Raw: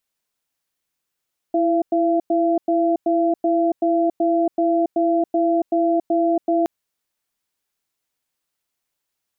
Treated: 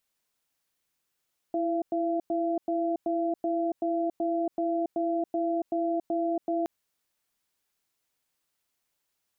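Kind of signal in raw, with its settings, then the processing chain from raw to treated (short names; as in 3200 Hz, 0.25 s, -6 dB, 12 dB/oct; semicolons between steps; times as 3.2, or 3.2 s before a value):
cadence 332 Hz, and 680 Hz, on 0.28 s, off 0.10 s, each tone -18 dBFS 5.12 s
limiter -22 dBFS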